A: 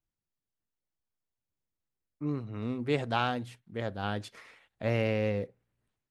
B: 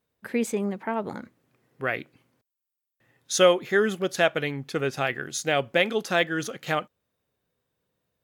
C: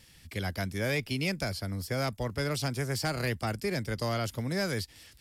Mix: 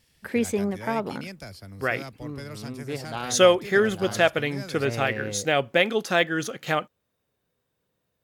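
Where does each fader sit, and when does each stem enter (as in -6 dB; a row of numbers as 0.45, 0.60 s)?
-4.0, +1.5, -8.0 dB; 0.00, 0.00, 0.00 s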